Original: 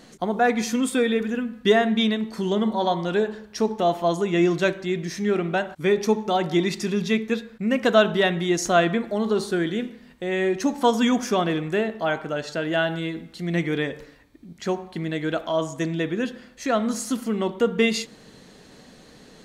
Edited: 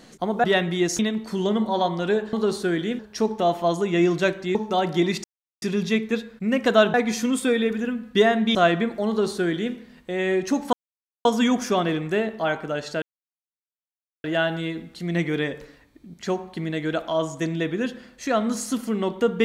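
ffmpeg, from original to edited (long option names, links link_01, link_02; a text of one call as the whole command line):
ffmpeg -i in.wav -filter_complex "[0:a]asplit=11[link_01][link_02][link_03][link_04][link_05][link_06][link_07][link_08][link_09][link_10][link_11];[link_01]atrim=end=0.442[link_12];[link_02]atrim=start=8.128:end=8.682[link_13];[link_03]atrim=start=2.048:end=3.392[link_14];[link_04]atrim=start=9.208:end=9.872[link_15];[link_05]atrim=start=3.388:end=4.952[link_16];[link_06]atrim=start=6.118:end=6.81,asetpts=PTS-STARTPTS,afade=type=out:start_time=0.688:duration=0.004:curve=hsin,apad=pad_dur=0.38[link_17];[link_07]atrim=start=6.81:end=8.132,asetpts=PTS-STARTPTS,afade=type=in:duration=0.004:curve=hsin[link_18];[link_08]atrim=start=0.438:end=2.052[link_19];[link_09]atrim=start=8.678:end=10.86,asetpts=PTS-STARTPTS,afade=type=out:start_time=2.178:duration=0.004:curve=hsin,apad=pad_dur=0.52[link_20];[link_10]atrim=start=10.86:end=12.63,asetpts=PTS-STARTPTS,afade=type=in:duration=0.004:curve=hsin,afade=type=out:start_time=1.766:duration=0.004:curve=hsin,apad=pad_dur=1.22[link_21];[link_11]atrim=start=12.63,asetpts=PTS-STARTPTS,afade=type=in:duration=0.004:curve=hsin[link_22];[link_12][link_13]acrossfade=duration=0.004:curve1=hsin:curve2=hsin[link_23];[link_23][link_14]acrossfade=duration=0.004:curve1=hsin:curve2=hsin[link_24];[link_24][link_15]acrossfade=duration=0.004:curve1=hsin:curve2=hsin[link_25];[link_25][link_16]acrossfade=duration=0.004:curve1=hsin:curve2=hsin[link_26];[link_17][link_18]concat=n=2:v=0:a=1[link_27];[link_26][link_27]acrossfade=duration=0.004:curve1=hsin:curve2=hsin[link_28];[link_28][link_19]acrossfade=duration=0.004:curve1=hsin:curve2=hsin[link_29];[link_20][link_21][link_22]concat=n=3:v=0:a=1[link_30];[link_29][link_30]acrossfade=duration=0.004:curve1=hsin:curve2=hsin" out.wav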